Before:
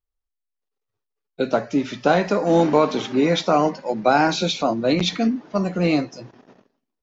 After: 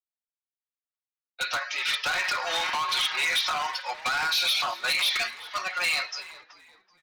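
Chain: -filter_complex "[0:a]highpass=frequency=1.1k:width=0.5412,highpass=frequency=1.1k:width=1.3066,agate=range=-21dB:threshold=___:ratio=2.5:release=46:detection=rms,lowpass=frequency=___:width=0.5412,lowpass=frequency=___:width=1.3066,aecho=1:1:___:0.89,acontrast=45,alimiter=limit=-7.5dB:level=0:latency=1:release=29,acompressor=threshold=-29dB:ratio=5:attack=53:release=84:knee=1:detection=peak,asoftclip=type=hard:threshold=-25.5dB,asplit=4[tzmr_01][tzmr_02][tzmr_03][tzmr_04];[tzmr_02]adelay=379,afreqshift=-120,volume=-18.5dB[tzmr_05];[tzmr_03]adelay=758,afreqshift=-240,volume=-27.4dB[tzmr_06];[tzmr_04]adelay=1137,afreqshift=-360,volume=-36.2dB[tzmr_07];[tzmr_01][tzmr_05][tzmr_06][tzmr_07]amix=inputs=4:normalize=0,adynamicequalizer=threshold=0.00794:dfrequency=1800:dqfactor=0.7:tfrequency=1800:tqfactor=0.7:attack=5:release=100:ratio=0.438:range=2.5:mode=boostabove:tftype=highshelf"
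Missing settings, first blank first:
-56dB, 4.9k, 4.9k, 5.5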